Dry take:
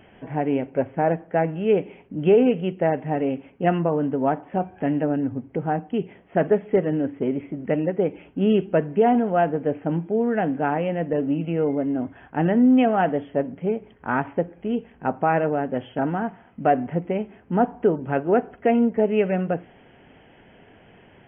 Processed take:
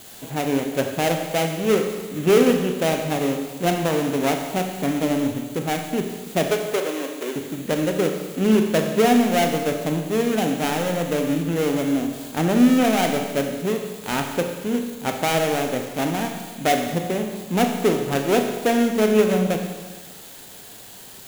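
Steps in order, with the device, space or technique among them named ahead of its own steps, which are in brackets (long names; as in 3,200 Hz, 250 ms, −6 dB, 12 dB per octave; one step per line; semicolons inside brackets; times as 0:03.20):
budget class-D amplifier (gap after every zero crossing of 0.27 ms; spike at every zero crossing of −24.5 dBFS)
0:06.46–0:07.36: Bessel high-pass filter 480 Hz, order 4
four-comb reverb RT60 1.4 s, combs from 29 ms, DRR 4 dB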